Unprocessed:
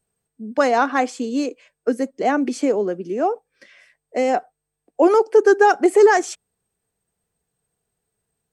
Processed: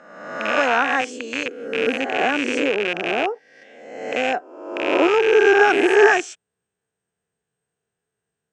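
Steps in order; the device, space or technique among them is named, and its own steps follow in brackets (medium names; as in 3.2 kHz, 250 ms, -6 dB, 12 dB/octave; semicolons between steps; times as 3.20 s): reverse spectral sustain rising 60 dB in 1.09 s; 1.01–1.46 s: tone controls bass -14 dB, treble +3 dB; car door speaker with a rattle (rattle on loud lows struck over -30 dBFS, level -8 dBFS; cabinet simulation 96–7900 Hz, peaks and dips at 410 Hz +3 dB, 1.6 kHz +7 dB, 2.9 kHz +4 dB, 4.5 kHz -6 dB); trim -6 dB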